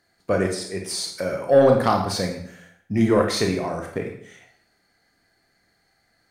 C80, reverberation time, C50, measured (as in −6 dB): 9.5 dB, 0.65 s, 5.5 dB